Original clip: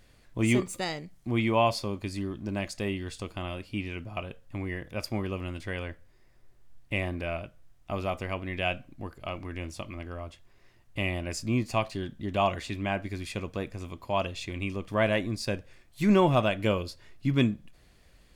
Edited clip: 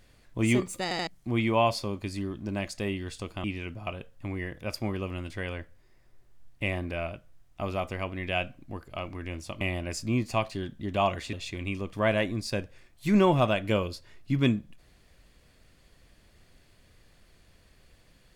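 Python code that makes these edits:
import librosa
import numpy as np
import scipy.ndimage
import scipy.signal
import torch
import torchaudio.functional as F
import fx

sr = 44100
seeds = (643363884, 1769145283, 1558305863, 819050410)

y = fx.edit(x, sr, fx.stutter_over(start_s=0.83, slice_s=0.08, count=3),
    fx.cut(start_s=3.44, length_s=0.3),
    fx.cut(start_s=9.91, length_s=1.1),
    fx.cut(start_s=12.73, length_s=1.55), tone=tone)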